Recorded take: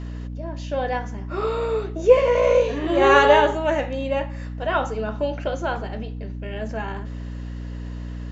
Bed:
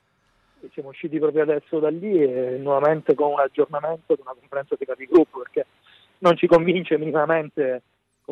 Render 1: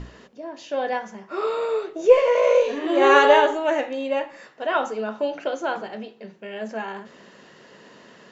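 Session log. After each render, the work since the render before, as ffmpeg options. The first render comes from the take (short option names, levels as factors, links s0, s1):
-af "bandreject=f=60:t=h:w=6,bandreject=f=120:t=h:w=6,bandreject=f=180:t=h:w=6,bandreject=f=240:t=h:w=6,bandreject=f=300:t=h:w=6"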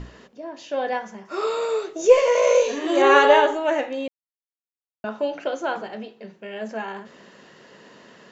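-filter_complex "[0:a]asettb=1/sr,asplit=3[s0][s1][s2];[s0]atrim=end=1.254[s3];[s1]atrim=start=1.25:end=3.02,asetpts=PTS-STARTPTS,afade=t=in:d=0.004:c=qsin,afade=t=out:st=1.766:d=0.004:c=qsin,equalizer=f=6600:t=o:w=1.1:g=13[s4];[s2]atrim=start=3.016[s5];[s3][s4]acrossfade=d=0.004:c1=hsin:c2=qsin[s6];[s6][s5]acrossfade=d=0.004:c1=qsin:c2=hsin,asplit=3[s7][s8][s9];[s7]atrim=end=4.08,asetpts=PTS-STARTPTS,afade=t=out:st=4.076:d=0.004:c=hsin[s10];[s8]atrim=start=4.08:end=5.04,asetpts=PTS-STARTPTS,volume=0[s11];[s9]atrim=start=5.04,asetpts=PTS-STARTPTS,afade=t=in:d=0.004:c=hsin[s12];[s10][s11][s12]concat=n=3:v=0:a=1"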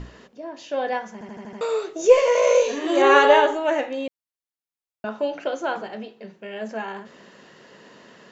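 -filter_complex "[0:a]asplit=7[s0][s1][s2][s3][s4][s5][s6];[s0]atrim=end=1.212[s7];[s1]atrim=start=1.128:end=1.212[s8];[s2]atrim=start=1.128:end=1.212[s9];[s3]atrim=start=1.128:end=1.212[s10];[s4]atrim=start=1.128:end=1.212[s11];[s5]atrim=start=1.128:end=1.212[s12];[s6]atrim=start=1.608[s13];[s7][s8]acrossfade=d=0.004:c1=hsin:c2=hsin[s14];[s14][s9]acrossfade=d=0.004:c1=hsin:c2=hsin[s15];[s15][s10]acrossfade=d=0.004:c1=hsin:c2=hsin[s16];[s16][s11]acrossfade=d=0.004:c1=hsin:c2=hsin[s17];[s17][s12]acrossfade=d=0.004:c1=hsin:c2=hsin[s18];[s18][s13]acrossfade=d=0.004:c1=hsin:c2=hsin"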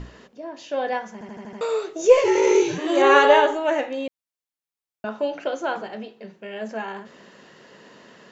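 -filter_complex "[0:a]asplit=3[s0][s1][s2];[s0]afade=t=out:st=2.23:d=0.02[s3];[s1]afreqshift=-110,afade=t=in:st=2.23:d=0.02,afade=t=out:st=2.77:d=0.02[s4];[s2]afade=t=in:st=2.77:d=0.02[s5];[s3][s4][s5]amix=inputs=3:normalize=0"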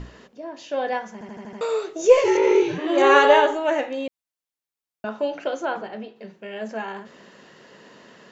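-filter_complex "[0:a]asettb=1/sr,asplit=3[s0][s1][s2];[s0]atrim=end=2.374[s3];[s1]atrim=start=2.37:end=2.98,asetpts=PTS-STARTPTS,afade=t=in:d=0.004:c=qsin,afade=t=out:st=0.606:d=0.004:c=qsin,lowpass=3400[s4];[s2]atrim=start=2.976[s5];[s3][s4]acrossfade=d=0.004:c1=hsin:c2=qsin[s6];[s6][s5]acrossfade=d=0.004:c1=qsin:c2=hsin,asettb=1/sr,asplit=3[s7][s8][s9];[s7]atrim=end=5.654[s10];[s8]atrim=start=5.65:end=6.16,asetpts=PTS-STARTPTS,afade=t=in:d=0.004:c=qsin,afade=t=out:st=0.506:d=0.004:c=qsin,lowpass=f=3300:p=1[s11];[s9]atrim=start=6.156[s12];[s10][s11]acrossfade=d=0.004:c1=hsin:c2=qsin[s13];[s13][s12]acrossfade=d=0.004:c1=qsin:c2=hsin"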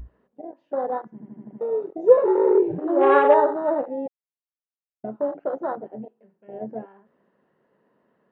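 -af "lowpass=1200,afwtdn=0.0562"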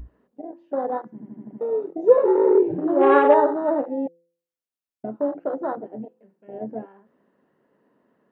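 -af "equalizer=f=280:w=3:g=6,bandreject=f=170.1:t=h:w=4,bandreject=f=340.2:t=h:w=4,bandreject=f=510.3:t=h:w=4"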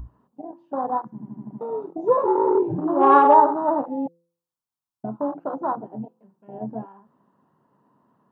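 -af "equalizer=f=125:t=o:w=1:g=10,equalizer=f=500:t=o:w=1:g=-8,equalizer=f=1000:t=o:w=1:g=12,equalizer=f=2000:t=o:w=1:g=-11"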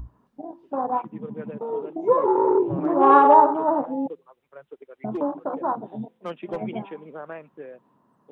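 -filter_complex "[1:a]volume=0.133[s0];[0:a][s0]amix=inputs=2:normalize=0"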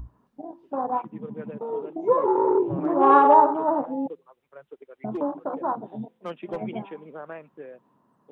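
-af "volume=0.841"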